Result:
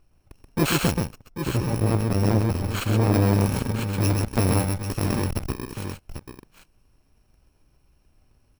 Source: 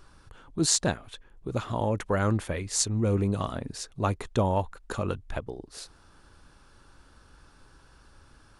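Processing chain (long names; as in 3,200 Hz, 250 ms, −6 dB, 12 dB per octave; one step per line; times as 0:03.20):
samples in bit-reversed order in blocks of 64 samples
leveller curve on the samples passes 3
low-pass filter 1,700 Hz 6 dB per octave, from 0:00.95 1,000 Hz, from 0:03.14 2,100 Hz
multi-tap delay 130/791 ms −4/−10.5 dB
saturating transformer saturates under 380 Hz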